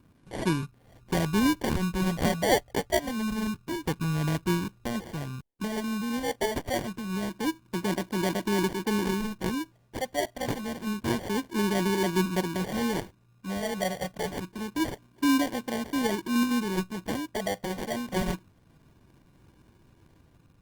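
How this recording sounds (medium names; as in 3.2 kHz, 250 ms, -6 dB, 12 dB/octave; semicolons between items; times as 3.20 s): phasing stages 4, 0.27 Hz, lowest notch 330–1200 Hz; aliases and images of a low sample rate 1.3 kHz, jitter 0%; Opus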